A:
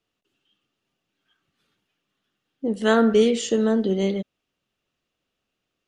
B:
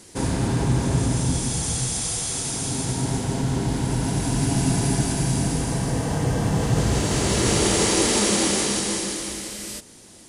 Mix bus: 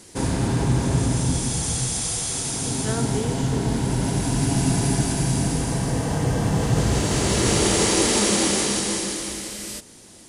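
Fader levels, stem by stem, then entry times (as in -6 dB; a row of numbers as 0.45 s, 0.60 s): -12.5 dB, +0.5 dB; 0.00 s, 0.00 s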